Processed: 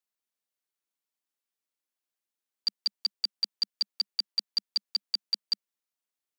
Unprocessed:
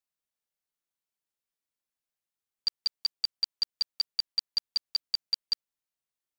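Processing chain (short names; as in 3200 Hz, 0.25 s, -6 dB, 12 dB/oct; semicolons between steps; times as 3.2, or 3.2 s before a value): Chebyshev high-pass 200 Hz, order 5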